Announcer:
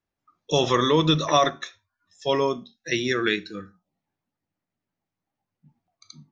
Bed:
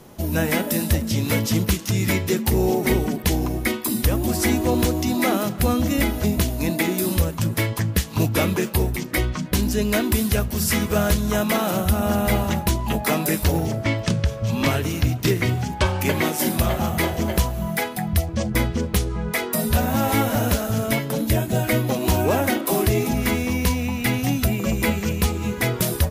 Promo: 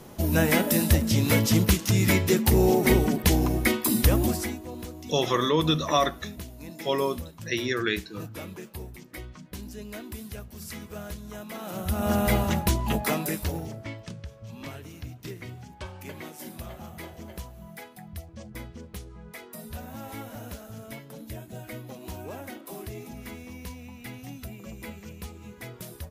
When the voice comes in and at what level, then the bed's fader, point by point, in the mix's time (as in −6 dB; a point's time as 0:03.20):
4.60 s, −3.5 dB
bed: 0:04.24 −0.5 dB
0:04.61 −18.5 dB
0:11.50 −18.5 dB
0:12.12 −3 dB
0:12.93 −3 dB
0:14.17 −19 dB